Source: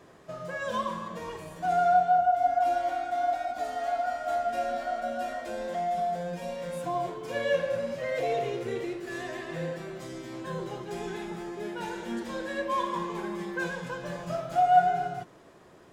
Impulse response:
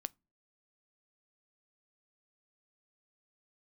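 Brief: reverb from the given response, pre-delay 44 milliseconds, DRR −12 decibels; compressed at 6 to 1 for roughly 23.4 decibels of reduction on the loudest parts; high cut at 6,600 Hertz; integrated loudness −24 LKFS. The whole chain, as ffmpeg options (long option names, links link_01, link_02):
-filter_complex "[0:a]lowpass=6600,acompressor=threshold=-42dB:ratio=6,asplit=2[link_01][link_02];[1:a]atrim=start_sample=2205,adelay=44[link_03];[link_02][link_03]afir=irnorm=-1:irlink=0,volume=14.5dB[link_04];[link_01][link_04]amix=inputs=2:normalize=0,volume=8dB"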